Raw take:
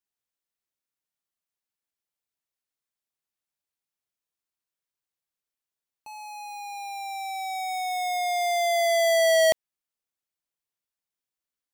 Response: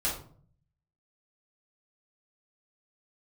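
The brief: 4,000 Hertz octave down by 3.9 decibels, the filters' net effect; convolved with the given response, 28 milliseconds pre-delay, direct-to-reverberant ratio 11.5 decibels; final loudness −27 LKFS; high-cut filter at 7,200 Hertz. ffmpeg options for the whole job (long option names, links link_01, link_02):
-filter_complex "[0:a]lowpass=7200,equalizer=frequency=4000:width_type=o:gain=-4.5,asplit=2[link_01][link_02];[1:a]atrim=start_sample=2205,adelay=28[link_03];[link_02][link_03]afir=irnorm=-1:irlink=0,volume=-18.5dB[link_04];[link_01][link_04]amix=inputs=2:normalize=0,volume=-2.5dB"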